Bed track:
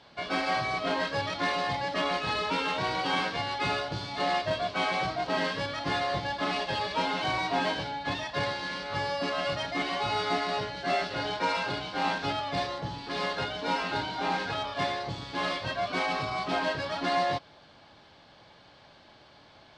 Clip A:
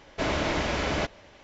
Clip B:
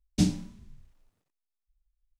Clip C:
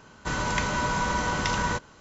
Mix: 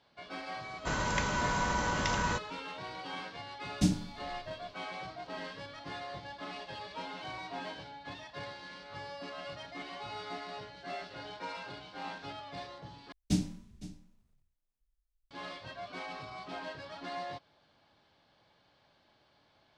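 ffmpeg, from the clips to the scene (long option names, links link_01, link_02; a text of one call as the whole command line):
ffmpeg -i bed.wav -i cue0.wav -i cue1.wav -i cue2.wav -filter_complex "[2:a]asplit=2[link_01][link_02];[0:a]volume=-13dB[link_03];[link_02]aecho=1:1:511:0.141[link_04];[link_03]asplit=2[link_05][link_06];[link_05]atrim=end=13.124[link_07];[link_04]atrim=end=2.19,asetpts=PTS-STARTPTS,volume=-5.5dB[link_08];[link_06]atrim=start=15.306[link_09];[3:a]atrim=end=2,asetpts=PTS-STARTPTS,volume=-5dB,afade=type=in:duration=0.004:curve=hsin,afade=type=out:start_time=1.996:duration=0.004:curve=hsin,adelay=600[link_10];[link_01]atrim=end=2.19,asetpts=PTS-STARTPTS,volume=-3.5dB,afade=type=in:duration=0.004:curve=hsin,afade=type=out:start_time=2.186:duration=0.004:curve=hsin,adelay=3630[link_11];[link_07][link_08]acrossfade=duration=0.004:curve1=hsin:curve2=hsin[link_12];[link_12][link_09]acrossfade=duration=0.004:curve1=hsin:curve2=hsin[link_13];[link_13][link_10][link_11]amix=inputs=3:normalize=0" out.wav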